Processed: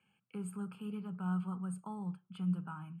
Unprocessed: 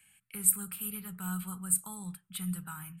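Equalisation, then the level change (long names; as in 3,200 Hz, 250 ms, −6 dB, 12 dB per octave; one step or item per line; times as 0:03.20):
moving average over 23 samples
high-pass filter 200 Hz 12 dB per octave
high-frequency loss of the air 76 metres
+6.0 dB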